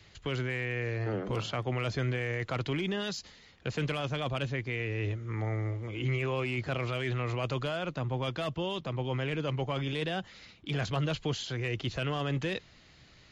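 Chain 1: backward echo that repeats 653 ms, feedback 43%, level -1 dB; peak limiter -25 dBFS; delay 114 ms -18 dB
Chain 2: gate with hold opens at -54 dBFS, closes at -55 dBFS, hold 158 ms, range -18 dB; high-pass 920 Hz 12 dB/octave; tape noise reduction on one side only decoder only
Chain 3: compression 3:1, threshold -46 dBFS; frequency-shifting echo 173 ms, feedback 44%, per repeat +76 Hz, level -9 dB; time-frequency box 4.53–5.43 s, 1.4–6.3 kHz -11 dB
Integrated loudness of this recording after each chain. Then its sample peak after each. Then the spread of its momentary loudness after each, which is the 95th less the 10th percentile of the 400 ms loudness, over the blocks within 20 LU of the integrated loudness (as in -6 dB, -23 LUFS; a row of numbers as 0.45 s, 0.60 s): -34.0 LUFS, -39.0 LUFS, -45.0 LUFS; -24.0 dBFS, -22.5 dBFS, -29.0 dBFS; 2 LU, 7 LU, 3 LU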